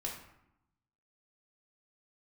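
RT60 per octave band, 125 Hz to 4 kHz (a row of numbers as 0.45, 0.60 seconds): 1.2, 1.1, 0.75, 0.85, 0.70, 0.50 seconds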